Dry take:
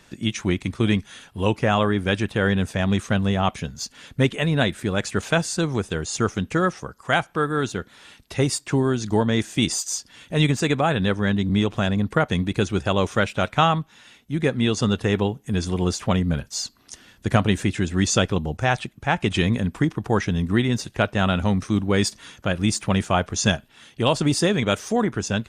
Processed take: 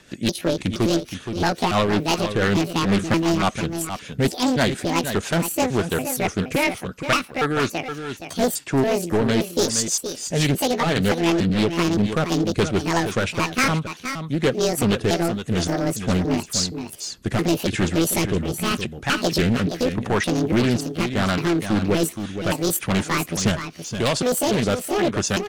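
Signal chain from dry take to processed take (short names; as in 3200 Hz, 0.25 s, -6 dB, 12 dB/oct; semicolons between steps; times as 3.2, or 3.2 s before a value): trilling pitch shifter +9 st, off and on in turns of 0.285 s; low shelf 160 Hz -6 dB; hard clip -20 dBFS, distortion -9 dB; rotary speaker horn 6 Hz, later 0.8 Hz, at 14.98; on a send: echo 0.47 s -9 dB; on the sum: Doppler distortion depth 0.39 ms; gain +6.5 dB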